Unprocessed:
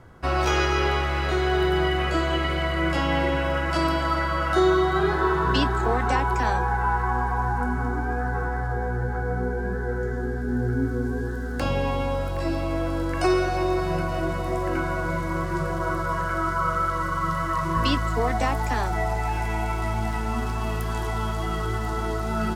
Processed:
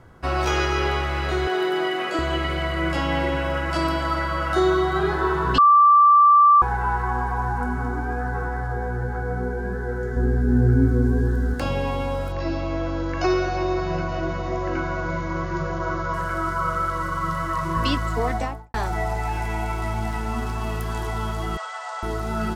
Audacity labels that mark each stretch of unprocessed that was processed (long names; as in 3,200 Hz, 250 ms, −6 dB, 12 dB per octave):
1.470000	2.190000	high-pass filter 230 Hz 24 dB per octave
5.580000	6.620000	beep over 1,170 Hz −10 dBFS
10.160000	11.540000	low-shelf EQ 310 Hz +10 dB
12.320000	16.140000	linear-phase brick-wall low-pass 7,100 Hz
18.290000	18.740000	fade out and dull
21.570000	22.030000	linear-phase brick-wall band-pass 470–8,900 Hz